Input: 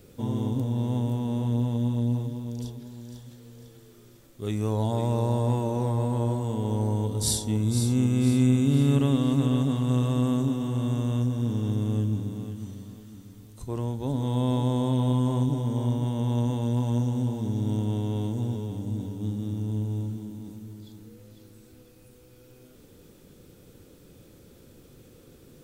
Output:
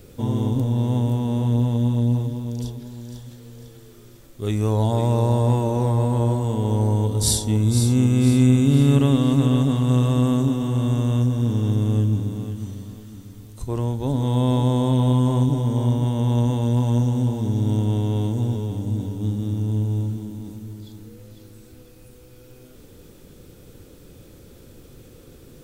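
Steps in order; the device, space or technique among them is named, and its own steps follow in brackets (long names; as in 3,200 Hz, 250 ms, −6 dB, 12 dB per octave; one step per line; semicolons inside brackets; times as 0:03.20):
low shelf boost with a cut just above (low-shelf EQ 71 Hz +6.5 dB; parametric band 190 Hz −2 dB 1 octave)
level +5.5 dB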